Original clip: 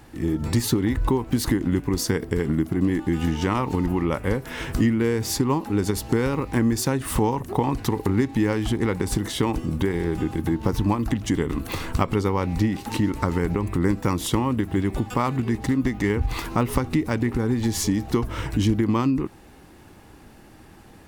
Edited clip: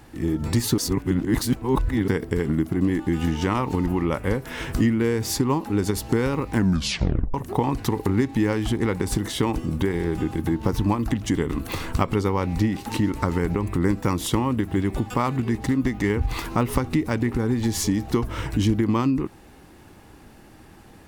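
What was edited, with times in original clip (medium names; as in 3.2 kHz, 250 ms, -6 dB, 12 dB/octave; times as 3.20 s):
0.78–2.08 s: reverse
6.53 s: tape stop 0.81 s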